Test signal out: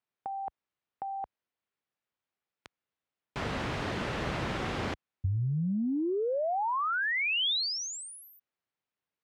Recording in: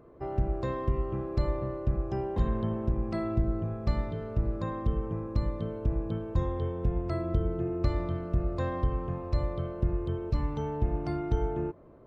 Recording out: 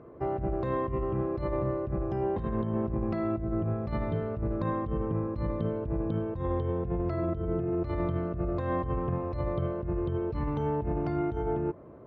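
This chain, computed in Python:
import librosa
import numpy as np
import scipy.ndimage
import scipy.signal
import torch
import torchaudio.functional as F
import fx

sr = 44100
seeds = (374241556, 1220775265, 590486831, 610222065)

y = scipy.signal.sosfilt(scipy.signal.butter(2, 66.0, 'highpass', fs=sr, output='sos'), x)
y = fx.bass_treble(y, sr, bass_db=0, treble_db=-10)
y = fx.over_compress(y, sr, threshold_db=-33.0, ratio=-1.0)
y = fx.air_absorb(y, sr, metres=94.0)
y = F.gain(torch.from_numpy(y), 3.5).numpy()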